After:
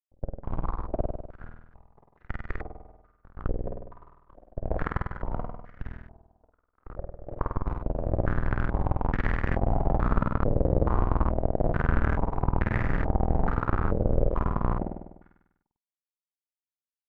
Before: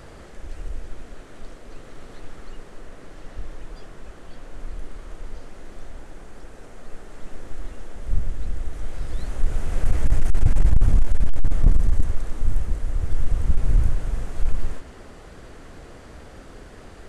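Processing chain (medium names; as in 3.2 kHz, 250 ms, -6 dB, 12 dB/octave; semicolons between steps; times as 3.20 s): tape start-up on the opening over 1.19 s; gate -29 dBFS, range -13 dB; bass shelf 71 Hz +6 dB; in parallel at +1 dB: peak limiter -12 dBFS, peak gain reduction 10.5 dB; on the sum: fuzz box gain 31 dB, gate -33 dBFS; power-law waveshaper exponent 3; feedback comb 110 Hz, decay 0.85 s, harmonics all, mix 40%; on a send: flutter echo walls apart 8.5 m, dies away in 0.97 s; on the sum: step-sequenced low-pass 2.3 Hz 550–1800 Hz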